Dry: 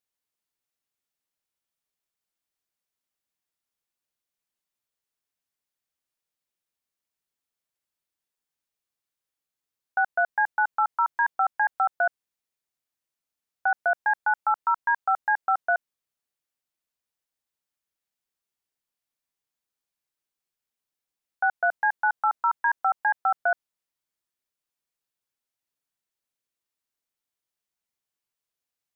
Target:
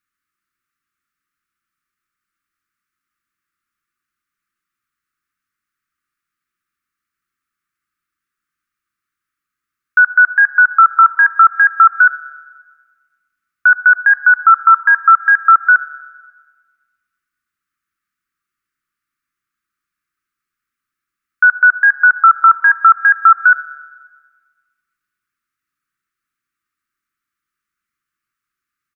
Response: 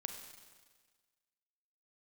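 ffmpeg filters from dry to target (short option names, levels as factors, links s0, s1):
-filter_complex "[0:a]firequalizer=gain_entry='entry(360,0);entry(520,-29);entry(830,-28);entry(1200,12);entry(3200,-6)':delay=0.05:min_phase=1,asplit=2[s0][s1];[1:a]atrim=start_sample=2205[s2];[s1][s2]afir=irnorm=-1:irlink=0,volume=0.596[s3];[s0][s3]amix=inputs=2:normalize=0,volume=1.78"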